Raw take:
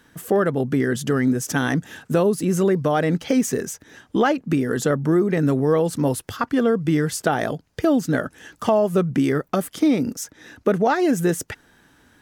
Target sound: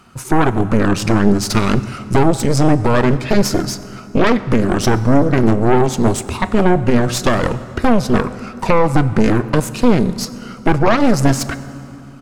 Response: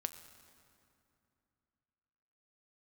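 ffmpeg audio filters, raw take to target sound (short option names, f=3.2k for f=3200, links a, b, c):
-filter_complex "[0:a]asetrate=35002,aresample=44100,atempo=1.25992,aeval=exprs='0.531*(cos(1*acos(clip(val(0)/0.531,-1,1)))-cos(1*PI/2))+0.168*(cos(3*acos(clip(val(0)/0.531,-1,1)))-cos(3*PI/2))+0.168*(cos(5*acos(clip(val(0)/0.531,-1,1)))-cos(5*PI/2))+0.15*(cos(6*acos(clip(val(0)/0.531,-1,1)))-cos(6*PI/2))':c=same,asplit=2[a][b];[1:a]atrim=start_sample=2205,highshelf=f=8.4k:g=-6[c];[b][c]afir=irnorm=-1:irlink=0,volume=9.5dB[d];[a][d]amix=inputs=2:normalize=0,volume=-7.5dB"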